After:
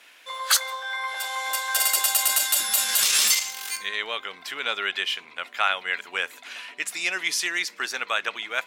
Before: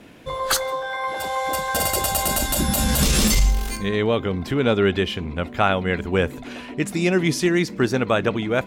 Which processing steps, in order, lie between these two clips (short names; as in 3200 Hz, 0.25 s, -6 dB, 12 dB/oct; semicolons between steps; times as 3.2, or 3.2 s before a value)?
HPF 1500 Hz 12 dB/oct; gain +2.5 dB